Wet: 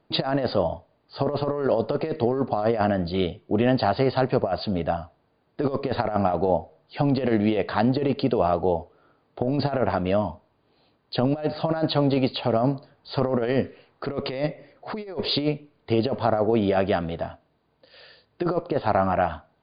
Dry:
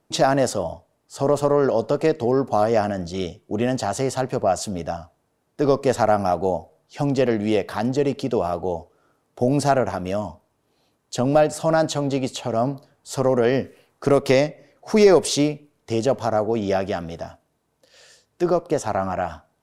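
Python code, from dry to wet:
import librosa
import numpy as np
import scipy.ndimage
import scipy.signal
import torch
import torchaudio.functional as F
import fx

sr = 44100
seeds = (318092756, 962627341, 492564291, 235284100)

y = fx.over_compress(x, sr, threshold_db=-21.0, ratio=-0.5)
y = fx.brickwall_lowpass(y, sr, high_hz=4900.0)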